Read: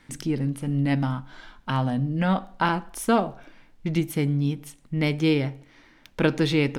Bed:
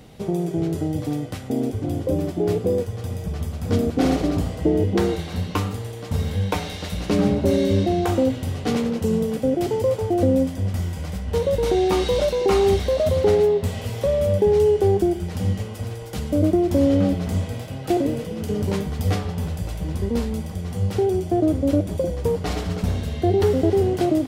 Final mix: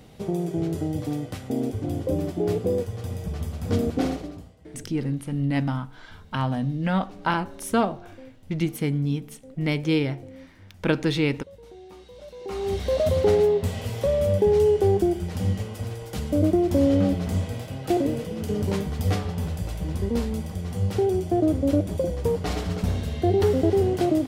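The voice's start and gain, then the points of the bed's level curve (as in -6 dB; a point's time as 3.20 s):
4.65 s, -1.0 dB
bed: 3.97 s -3 dB
4.58 s -26 dB
12.13 s -26 dB
12.94 s -2 dB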